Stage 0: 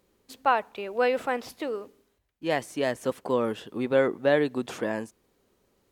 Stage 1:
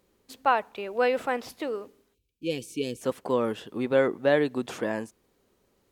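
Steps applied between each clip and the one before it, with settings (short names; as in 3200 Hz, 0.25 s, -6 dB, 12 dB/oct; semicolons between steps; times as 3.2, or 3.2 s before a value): spectral gain 2.14–3.01, 530–2200 Hz -25 dB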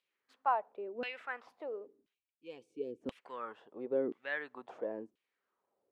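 LFO band-pass saw down 0.97 Hz 260–3000 Hz; gain -5 dB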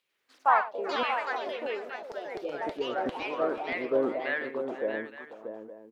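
tapped delay 0.109/0.485/0.632/0.863 s -14.5/-16/-7.5/-14.5 dB; echoes that change speed 93 ms, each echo +3 st, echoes 3; gain +6 dB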